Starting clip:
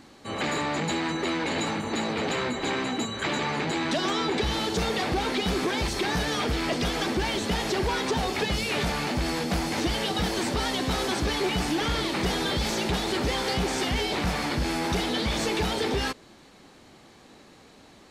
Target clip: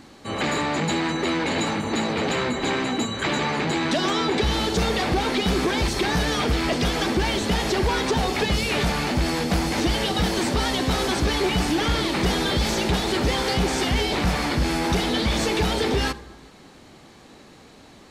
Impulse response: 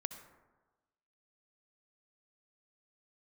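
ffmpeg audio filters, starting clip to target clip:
-filter_complex "[0:a]asplit=2[s0][s1];[1:a]atrim=start_sample=2205,lowshelf=f=230:g=6.5[s2];[s1][s2]afir=irnorm=-1:irlink=0,volume=0.596[s3];[s0][s3]amix=inputs=2:normalize=0"

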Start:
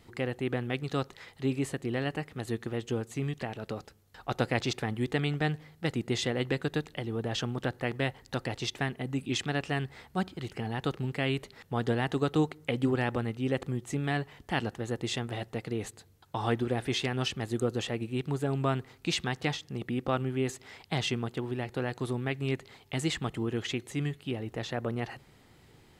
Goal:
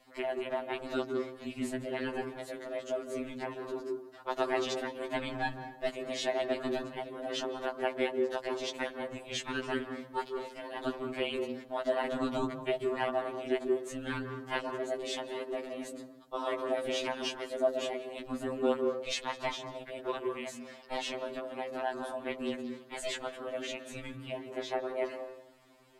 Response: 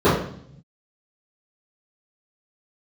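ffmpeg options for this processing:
-filter_complex "[0:a]lowshelf=f=370:t=q:w=3:g=-9,aeval=exprs='val(0)*sin(2*PI*160*n/s)':c=same,asplit=2[s0][s1];[1:a]atrim=start_sample=2205,adelay=140[s2];[s1][s2]afir=irnorm=-1:irlink=0,volume=0.0316[s3];[s0][s3]amix=inputs=2:normalize=0,afftfilt=real='re*2.45*eq(mod(b,6),0)':imag='im*2.45*eq(mod(b,6),0)':win_size=2048:overlap=0.75,volume=1.19"

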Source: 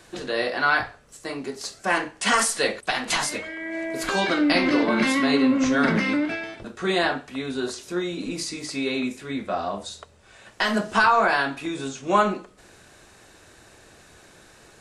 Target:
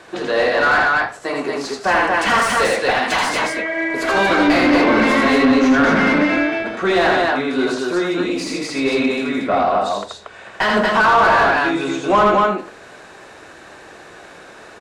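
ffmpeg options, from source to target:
-filter_complex "[0:a]aecho=1:1:81.63|233.2:0.708|0.708,asplit=2[s0][s1];[s1]highpass=f=720:p=1,volume=11.2,asoftclip=type=tanh:threshold=0.708[s2];[s0][s2]amix=inputs=2:normalize=0,lowpass=f=1100:p=1,volume=0.501"

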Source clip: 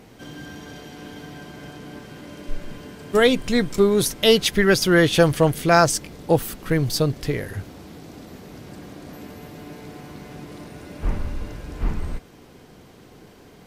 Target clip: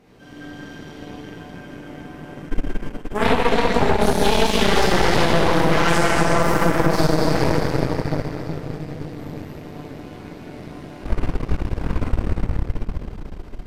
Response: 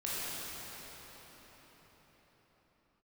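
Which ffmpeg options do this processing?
-filter_complex "[0:a]asettb=1/sr,asplit=3[s0][s1][s2];[s0]atrim=end=1.074[s3];[s1]atrim=start=1.07:end=3.45,asetpts=PTS-STARTPTS,afade=t=in:d=0.004:c=qsin,afade=t=out:st=2.376:d=0.004:c=qsin,equalizer=f=4200:t=o:w=0.71:g=-7.5[s4];[s2]atrim=start=3.446[s5];[s3][s4]acrossfade=d=0.004:c1=hsin:c2=qsin[s6];[s6][s5]acrossfade=d=0.004:c1=qsin:c2=hsin,flanger=delay=6.8:depth=5.8:regen=-65:speed=0.27:shape=sinusoidal,highshelf=f=6000:g=-8[s7];[1:a]atrim=start_sample=2205[s8];[s7][s8]afir=irnorm=-1:irlink=0,aeval=exprs='1.06*(cos(1*acos(clip(val(0)/1.06,-1,1)))-cos(1*PI/2))+0.422*(cos(8*acos(clip(val(0)/1.06,-1,1)))-cos(8*PI/2))':c=same,acompressor=threshold=0.282:ratio=6"

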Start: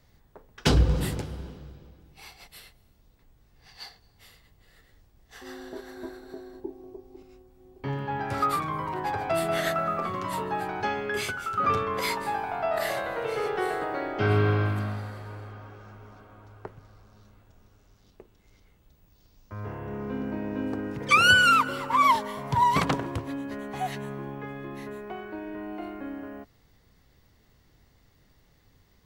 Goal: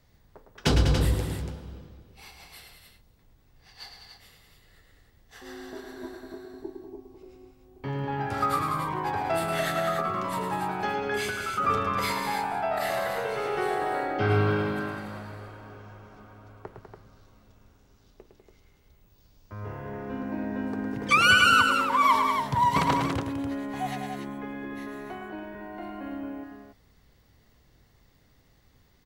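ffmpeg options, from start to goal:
-af "aecho=1:1:107.9|198.3|285.7:0.447|0.398|0.447,volume=0.841"

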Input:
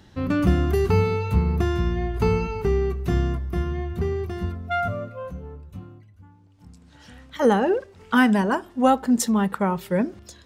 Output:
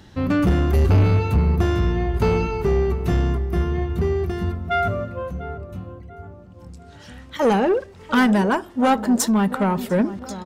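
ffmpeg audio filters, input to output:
-filter_complex "[0:a]asplit=3[s0][s1][s2];[s0]afade=t=out:st=0.73:d=0.02[s3];[s1]asubboost=boost=9.5:cutoff=170,afade=t=in:st=0.73:d=0.02,afade=t=out:st=1.18:d=0.02[s4];[s2]afade=t=in:st=1.18:d=0.02[s5];[s3][s4][s5]amix=inputs=3:normalize=0,asoftclip=type=tanh:threshold=0.15,asplit=2[s6][s7];[s7]adelay=696,lowpass=f=1400:p=1,volume=0.211,asplit=2[s8][s9];[s9]adelay=696,lowpass=f=1400:p=1,volume=0.51,asplit=2[s10][s11];[s11]adelay=696,lowpass=f=1400:p=1,volume=0.51,asplit=2[s12][s13];[s13]adelay=696,lowpass=f=1400:p=1,volume=0.51,asplit=2[s14][s15];[s15]adelay=696,lowpass=f=1400:p=1,volume=0.51[s16];[s6][s8][s10][s12][s14][s16]amix=inputs=6:normalize=0,volume=1.68"

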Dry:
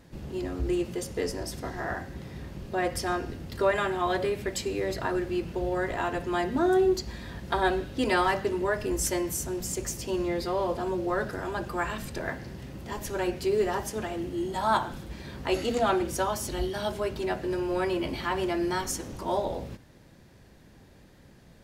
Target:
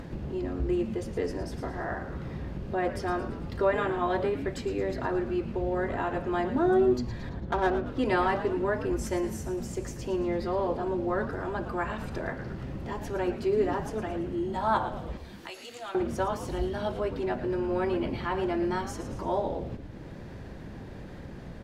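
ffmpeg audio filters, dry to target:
-filter_complex "[0:a]asettb=1/sr,asplit=3[s0][s1][s2];[s0]atrim=end=7.294[s3];[s1]atrim=start=7.29:end=7.87,asetpts=PTS-STARTPTS,afade=t=in:d=0.004:c=qsin,afade=t=out:st=0.576:d=0.004:c=qsin,adynamicsmooth=sensitivity=5:basefreq=690[s4];[s2]atrim=start=7.866[s5];[s3][s4]acrossfade=d=0.004:c1=hsin:c2=qsin[s6];[s6][s5]acrossfade=d=0.004:c1=qsin:c2=hsin,asettb=1/sr,asplit=3[s7][s8][s9];[s7]atrim=end=15.174[s10];[s8]atrim=start=15.17:end=15.95,asetpts=PTS-STARTPTS,afade=t=in:d=0.004:c=qsin,afade=t=out:st=0.776:d=0.004:c=qsin,aderivative[s11];[s9]atrim=start=15.946[s12];[s10][s11]acrossfade=d=0.004:c1=hsin:c2=qsin[s13];[s13][s12]acrossfade=d=0.004:c1=qsin:c2=hsin,asplit=6[s14][s15][s16][s17][s18][s19];[s15]adelay=112,afreqshift=-130,volume=0.266[s20];[s16]adelay=224,afreqshift=-260,volume=0.13[s21];[s17]adelay=336,afreqshift=-390,volume=0.0638[s22];[s18]adelay=448,afreqshift=-520,volume=0.0313[s23];[s19]adelay=560,afreqshift=-650,volume=0.0153[s24];[s14][s20][s21][s22][s23][s24]amix=inputs=6:normalize=0,acompressor=mode=upward:threshold=0.0355:ratio=2.5,lowpass=f=1600:p=1"

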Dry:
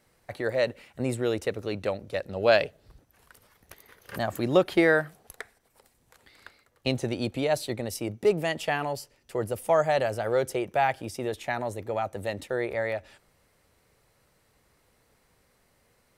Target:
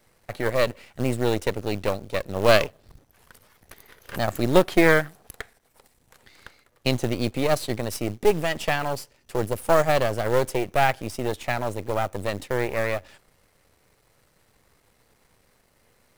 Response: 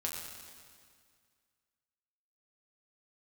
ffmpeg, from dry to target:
-af "aeval=exprs='if(lt(val(0),0),0.251*val(0),val(0))':c=same,acrusher=bits=5:mode=log:mix=0:aa=0.000001,volume=2.11"

